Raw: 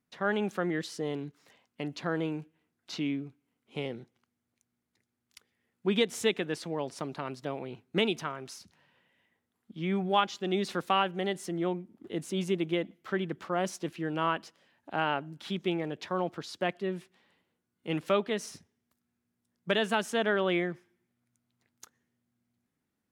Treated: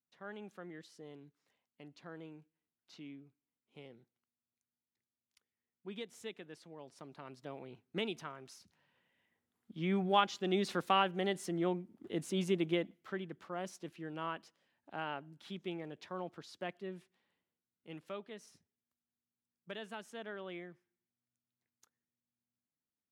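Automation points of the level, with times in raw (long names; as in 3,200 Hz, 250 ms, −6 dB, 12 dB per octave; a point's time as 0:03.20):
0:06.76 −18 dB
0:07.56 −10 dB
0:08.57 −10 dB
0:09.81 −3 dB
0:12.74 −3 dB
0:13.27 −11 dB
0:16.94 −11 dB
0:18.09 −17.5 dB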